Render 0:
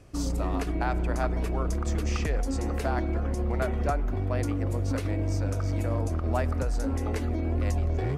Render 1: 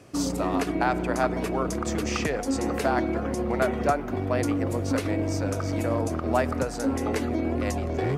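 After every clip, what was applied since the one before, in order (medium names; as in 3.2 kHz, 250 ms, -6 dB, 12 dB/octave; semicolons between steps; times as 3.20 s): high-pass 150 Hz 12 dB/octave; trim +6 dB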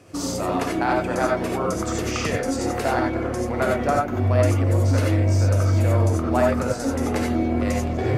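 gated-style reverb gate 110 ms rising, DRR -1 dB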